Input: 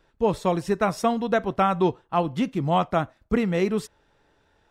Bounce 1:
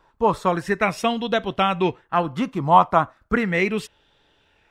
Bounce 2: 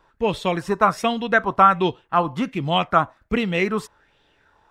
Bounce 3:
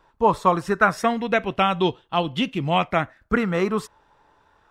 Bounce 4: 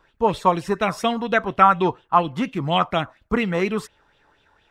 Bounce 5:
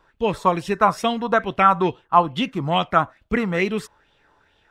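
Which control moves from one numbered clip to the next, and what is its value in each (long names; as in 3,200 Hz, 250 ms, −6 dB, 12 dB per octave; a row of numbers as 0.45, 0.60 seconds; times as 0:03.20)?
auto-filter bell, speed: 0.36, 1.3, 0.24, 4.2, 2.3 Hertz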